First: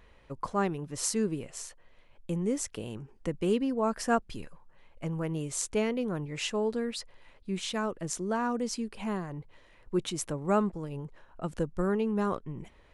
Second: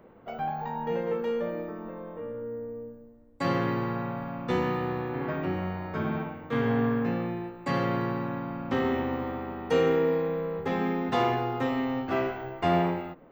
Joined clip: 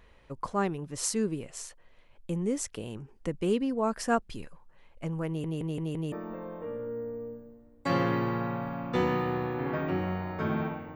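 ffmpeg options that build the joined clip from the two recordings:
ffmpeg -i cue0.wav -i cue1.wav -filter_complex "[0:a]apad=whole_dur=10.95,atrim=end=10.95,asplit=5[link_01][link_02][link_03][link_04][link_05];[link_01]atrim=end=5.442[link_06];[link_02]atrim=start=5.268:end=5.442[link_07];[link_03]atrim=start=5.268:end=5.442[link_08];[link_04]atrim=start=5.268:end=5.442[link_09];[link_05]atrim=start=5.268:end=5.442[link_10];[1:a]atrim=start=1.668:end=6.5[link_11];[link_06][link_07]acrossfade=duration=0.004:curve1=hsin:curve2=hsin[link_12];[link_12][link_08]acrossfade=duration=0.004:curve1=hsin:curve2=hsin[link_13];[link_13][link_09]acrossfade=duration=0.004:curve1=hsin:curve2=hsin[link_14];[link_14][link_10]acrossfade=duration=0.004:curve1=hsin:curve2=hsin[link_15];[link_15][link_11]acrossfade=duration=0.004:curve1=hsin:curve2=hsin" out.wav

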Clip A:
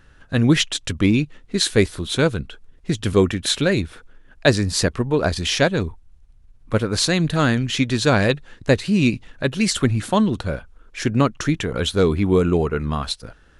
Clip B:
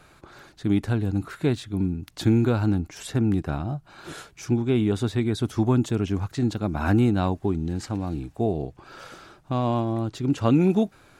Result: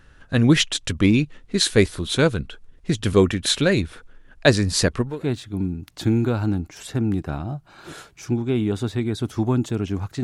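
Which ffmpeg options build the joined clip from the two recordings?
ffmpeg -i cue0.wav -i cue1.wav -filter_complex "[0:a]apad=whole_dur=10.23,atrim=end=10.23,atrim=end=5.3,asetpts=PTS-STARTPTS[link_01];[1:a]atrim=start=1.2:end=6.43,asetpts=PTS-STARTPTS[link_02];[link_01][link_02]acrossfade=duration=0.3:curve1=qua:curve2=qua" out.wav

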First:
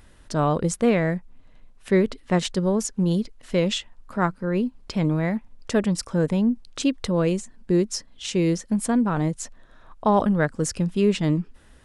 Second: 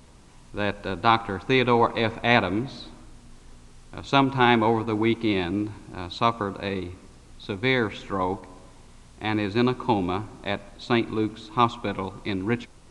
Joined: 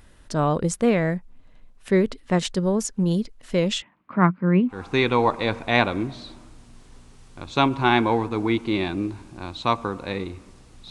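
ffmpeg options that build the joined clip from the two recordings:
ffmpeg -i cue0.wav -i cue1.wav -filter_complex "[0:a]asettb=1/sr,asplit=3[link_01][link_02][link_03];[link_01]atrim=end=3.824[link_04];[link_02]atrim=start=3.82:end=4.85,asetpts=PTS-STARTPTS,afade=type=in:duration=0.004:curve=qsin,afade=type=out:start_time=1.026:duration=0.004:curve=qsin,highpass=frequency=110:width=0.5412,highpass=frequency=110:width=1.3066,equalizer=frequency=180:width_type=q:width=4:gain=8,equalizer=frequency=310:width_type=q:width=4:gain=7,equalizer=frequency=470:width_type=q:width=4:gain=-4,equalizer=frequency=1100:width_type=q:width=4:gain=6,equalizer=frequency=2200:width_type=q:width=4:gain=8,lowpass=frequency=3100:width=0.5412,lowpass=frequency=3100:width=1.3066[link_05];[link_03]atrim=start=4.846[link_06];[link_04][link_05]acrossfade=duration=0.004:curve1=hsin:curve2=qsin[link_07];[link_07][link_06]acrossfade=duration=0.004:curve1=qsin:curve2=hsin,apad=whole_dur=10.9,atrim=end=10.9,atrim=end=4.85,asetpts=PTS-STARTPTS[link_08];[1:a]atrim=start=1.23:end=7.46,asetpts=PTS-STARTPTS[link_09];[link_08][link_09]acrossfade=duration=0.18:curve1=tri:curve2=tri" out.wav

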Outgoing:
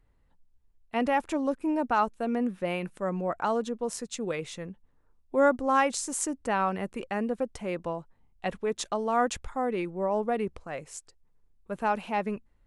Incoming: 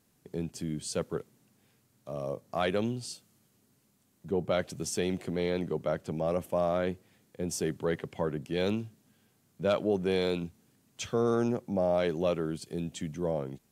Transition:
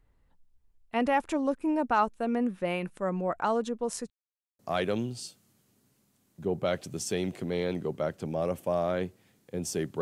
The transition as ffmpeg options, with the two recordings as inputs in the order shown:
ffmpeg -i cue0.wav -i cue1.wav -filter_complex "[0:a]apad=whole_dur=10.01,atrim=end=10.01,asplit=2[link_01][link_02];[link_01]atrim=end=4.1,asetpts=PTS-STARTPTS,afade=type=out:start_time=4.096:duration=0.004:curve=hsin[link_03];[link_02]atrim=start=4.1:end=4.59,asetpts=PTS-STARTPTS,volume=0[link_04];[1:a]atrim=start=2.45:end=7.87,asetpts=PTS-STARTPTS,afade=type=in:duration=0.004:curve=hsin[link_05];[link_03][link_04][link_05]concat=n=3:v=0:a=1" out.wav

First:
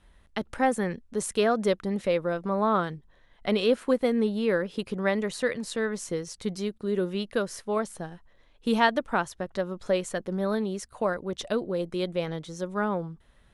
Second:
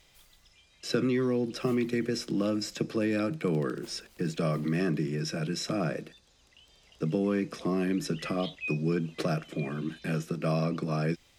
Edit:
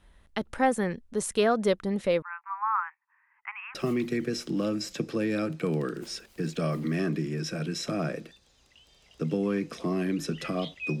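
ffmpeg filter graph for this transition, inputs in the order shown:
ffmpeg -i cue0.wav -i cue1.wav -filter_complex "[0:a]asettb=1/sr,asplit=3[link_01][link_02][link_03];[link_01]atrim=end=2.224[link_04];[link_02]atrim=start=2.22:end=3.75,asetpts=PTS-STARTPTS,afade=type=in:duration=0.004:curve=qsin,afade=type=out:start_time=1.526:duration=0.004:curve=qsin,asuperpass=centerf=1500:order=20:qfactor=0.85[link_05];[link_03]atrim=start=3.746[link_06];[link_04][link_05]acrossfade=duration=0.004:curve1=hsin:curve2=qsin[link_07];[link_07][link_06]acrossfade=duration=0.004:curve1=qsin:curve2=hsin,apad=whole_dur=11,atrim=end=11,atrim=end=3.752[link_08];[1:a]atrim=start=1.558:end=8.81[link_09];[link_08][link_09]acrossfade=duration=0.004:curve1=hsin:curve2=hsin" out.wav

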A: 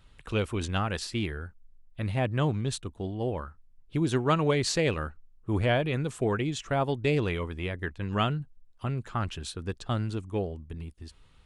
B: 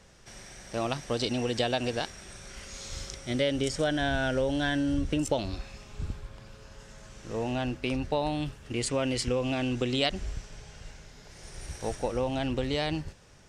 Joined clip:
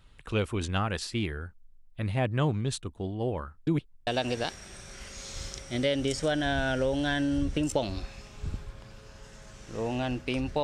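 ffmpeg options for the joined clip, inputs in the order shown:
ffmpeg -i cue0.wav -i cue1.wav -filter_complex "[0:a]apad=whole_dur=10.63,atrim=end=10.63,asplit=2[link_01][link_02];[link_01]atrim=end=3.672[link_03];[link_02]atrim=start=3.668:end=4.072,asetpts=PTS-STARTPTS,areverse[link_04];[1:a]atrim=start=1.628:end=8.19[link_05];[link_03][link_04]acrossfade=duration=0.004:curve1=hsin:curve2=hsin[link_06];[link_06][link_05]acrossfade=duration=0.004:curve1=hsin:curve2=hsin" out.wav

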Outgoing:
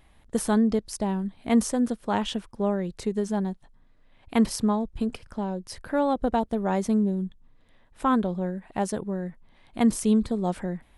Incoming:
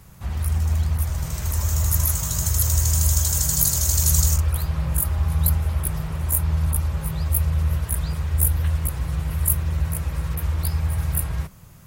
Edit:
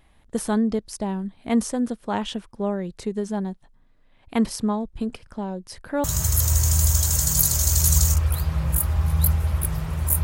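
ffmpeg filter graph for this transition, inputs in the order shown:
ffmpeg -i cue0.wav -i cue1.wav -filter_complex "[0:a]apad=whole_dur=10.23,atrim=end=10.23,atrim=end=6.042[link_01];[1:a]atrim=start=2.258:end=6.45[link_02];[link_01][link_02]acrossfade=duration=0.004:curve1=hsin:curve2=hsin" out.wav

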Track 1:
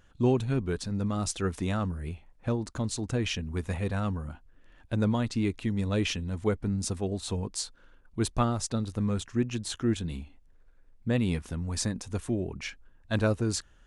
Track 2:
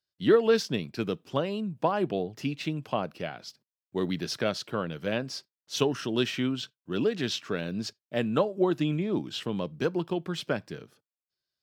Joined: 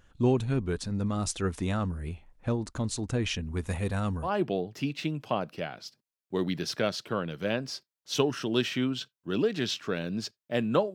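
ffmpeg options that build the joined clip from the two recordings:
ffmpeg -i cue0.wav -i cue1.wav -filter_complex "[0:a]asettb=1/sr,asplit=3[link_01][link_02][link_03];[link_01]atrim=end=3.664[link_04];[link_02]atrim=start=3.66:end=4.3,asetpts=PTS-STARTPTS,afade=type=in:duration=0.004:curve=qsin,afade=type=out:start_time=0.636:duration=0.004:curve=qsin,highshelf=frequency=8500:gain=12[link_05];[link_03]atrim=start=4.296[link_06];[link_04][link_05]acrossfade=duration=0.004:curve1=hsin:curve2=qsin[link_07];[link_07][link_06]acrossfade=duration=0.004:curve1=qsin:curve2=hsin,apad=whole_dur=10.94,atrim=end=10.94,atrim=end=4.3,asetpts=PTS-STARTPTS[link_08];[1:a]atrim=start=1.84:end=8.56,asetpts=PTS-STARTPTS[link_09];[link_08][link_09]acrossfade=duration=0.08:curve1=tri:curve2=tri" out.wav

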